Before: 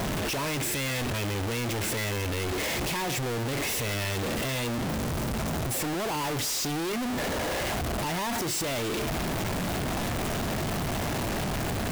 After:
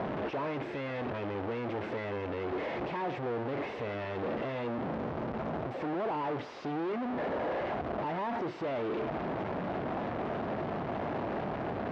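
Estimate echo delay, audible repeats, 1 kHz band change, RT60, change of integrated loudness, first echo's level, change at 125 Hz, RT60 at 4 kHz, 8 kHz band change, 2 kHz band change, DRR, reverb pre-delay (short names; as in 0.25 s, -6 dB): none, none, -2.5 dB, none, -6.0 dB, none, -10.0 dB, none, under -35 dB, -9.0 dB, none, none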